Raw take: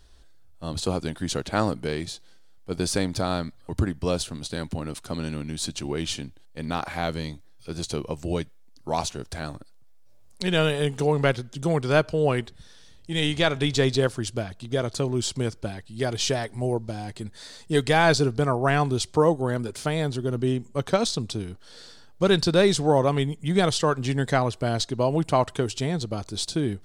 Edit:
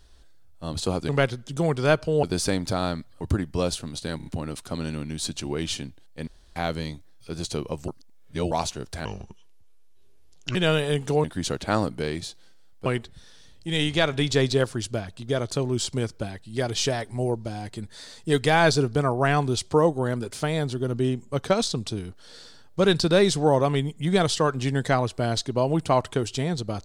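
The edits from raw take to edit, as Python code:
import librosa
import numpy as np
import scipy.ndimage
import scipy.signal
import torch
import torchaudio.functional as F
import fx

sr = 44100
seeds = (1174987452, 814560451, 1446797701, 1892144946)

y = fx.edit(x, sr, fx.swap(start_s=1.09, length_s=1.62, other_s=11.15, other_length_s=1.14),
    fx.stutter(start_s=4.65, slice_s=0.03, count=4),
    fx.room_tone_fill(start_s=6.66, length_s=0.29),
    fx.reverse_span(start_s=8.27, length_s=0.63),
    fx.speed_span(start_s=9.44, length_s=1.02, speed=0.68), tone=tone)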